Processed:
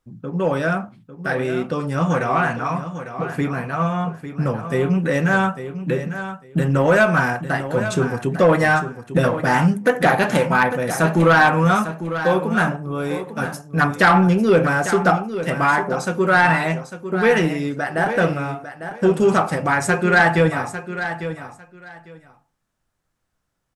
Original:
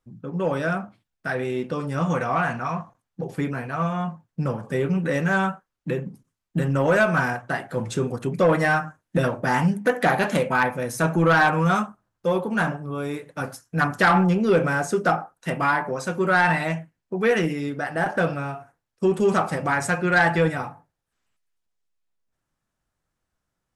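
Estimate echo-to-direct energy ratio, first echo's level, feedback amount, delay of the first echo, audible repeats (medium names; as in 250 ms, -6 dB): -11.0 dB, -11.0 dB, 18%, 850 ms, 2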